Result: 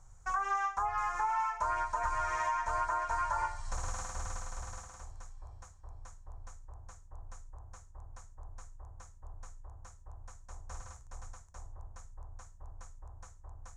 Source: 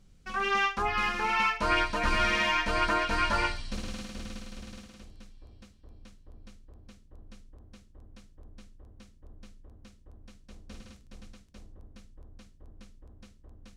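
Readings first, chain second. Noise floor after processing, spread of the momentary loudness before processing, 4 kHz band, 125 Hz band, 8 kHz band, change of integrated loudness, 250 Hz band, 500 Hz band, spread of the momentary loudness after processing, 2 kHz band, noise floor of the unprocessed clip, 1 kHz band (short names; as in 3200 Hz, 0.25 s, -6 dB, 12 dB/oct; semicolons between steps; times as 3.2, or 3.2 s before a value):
-55 dBFS, 17 LU, -20.0 dB, -4.0 dB, +0.5 dB, -6.5 dB, -22.0 dB, -10.0 dB, 21 LU, -11.0 dB, -58 dBFS, -2.0 dB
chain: EQ curve 120 Hz 0 dB, 220 Hz -25 dB, 330 Hz -13 dB, 480 Hz -8 dB, 900 Hz +11 dB, 1800 Hz -2 dB, 2800 Hz -17 dB, 4700 Hz -12 dB, 6800 Hz +9 dB, 12000 Hz -9 dB; compressor 6:1, threshold -34 dBFS, peak gain reduction 15.5 dB; gain +3 dB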